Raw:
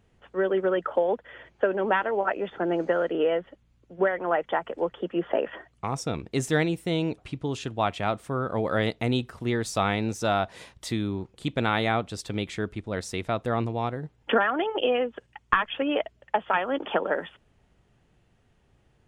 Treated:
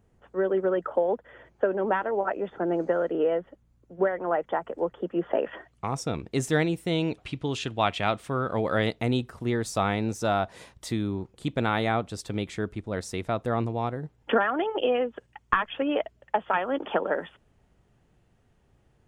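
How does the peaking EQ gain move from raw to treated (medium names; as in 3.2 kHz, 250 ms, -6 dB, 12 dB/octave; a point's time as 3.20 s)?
peaking EQ 3 kHz 1.7 oct
5.09 s -9.5 dB
5.53 s -1.5 dB
6.79 s -1.5 dB
7.21 s +5.5 dB
8.37 s +5.5 dB
9.23 s -4 dB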